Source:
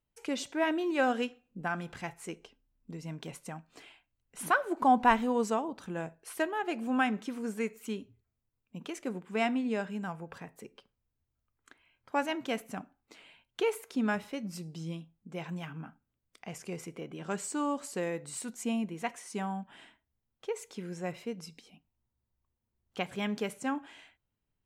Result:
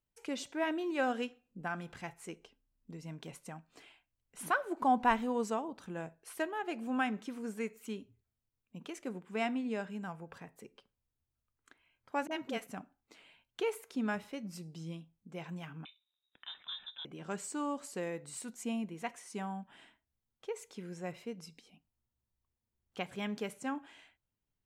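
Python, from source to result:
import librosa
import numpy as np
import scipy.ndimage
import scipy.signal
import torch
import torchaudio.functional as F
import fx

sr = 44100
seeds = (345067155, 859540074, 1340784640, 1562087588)

y = fx.dispersion(x, sr, late='highs', ms=40.0, hz=460.0, at=(12.27, 12.67))
y = fx.freq_invert(y, sr, carrier_hz=3800, at=(15.85, 17.05))
y = y * 10.0 ** (-4.5 / 20.0)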